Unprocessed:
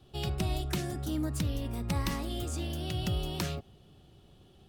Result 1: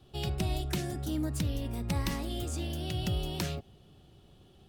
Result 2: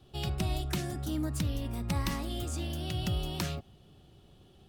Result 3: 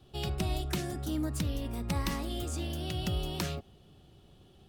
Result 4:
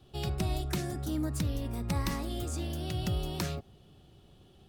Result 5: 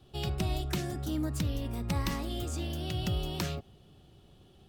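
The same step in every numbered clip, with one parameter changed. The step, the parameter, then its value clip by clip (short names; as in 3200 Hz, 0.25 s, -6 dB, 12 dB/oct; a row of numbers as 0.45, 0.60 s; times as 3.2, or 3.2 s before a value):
dynamic EQ, frequency: 1200, 440, 120, 3000, 9800 Hz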